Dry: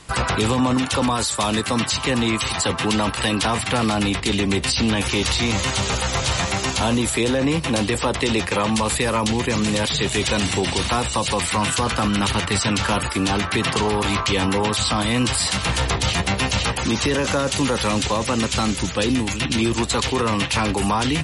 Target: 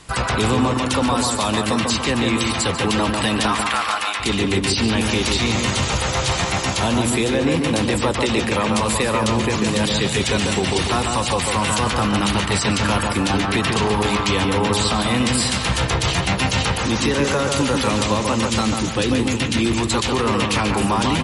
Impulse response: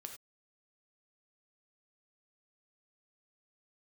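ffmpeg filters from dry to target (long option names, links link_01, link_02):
-filter_complex "[0:a]asettb=1/sr,asplit=3[link_01][link_02][link_03];[link_01]atrim=end=3.474[link_04];[link_02]atrim=start=3.47:end=4.2,asetpts=PTS-STARTPTS,afade=type=in:duration=0.004:curve=qsin,afade=type=out:start_time=0.726:duration=0.004:curve=qsin,highpass=frequency=1100:width_type=q:width=1.6[link_05];[link_03]atrim=start=4.196[link_06];[link_04][link_05]acrossfade=duration=0.004:curve1=hsin:curve2=qsin[link_07];[link_07][link_06]acrossfade=duration=0.004:curve1=qsin:curve2=hsin,asplit=2[link_08][link_09];[link_09]adelay=144,lowpass=frequency=2300:poles=1,volume=-3dB,asplit=2[link_10][link_11];[link_11]adelay=144,lowpass=frequency=2300:poles=1,volume=0.47,asplit=2[link_12][link_13];[link_13]adelay=144,lowpass=frequency=2300:poles=1,volume=0.47,asplit=2[link_14][link_15];[link_15]adelay=144,lowpass=frequency=2300:poles=1,volume=0.47,asplit=2[link_16][link_17];[link_17]adelay=144,lowpass=frequency=2300:poles=1,volume=0.47,asplit=2[link_18][link_19];[link_19]adelay=144,lowpass=frequency=2300:poles=1,volume=0.47[link_20];[link_08][link_10][link_12][link_14][link_16][link_18][link_20]amix=inputs=7:normalize=0"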